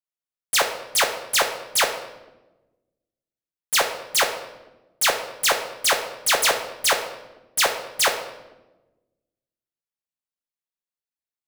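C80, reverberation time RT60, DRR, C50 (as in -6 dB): 11.0 dB, 1.1 s, 2.5 dB, 8.0 dB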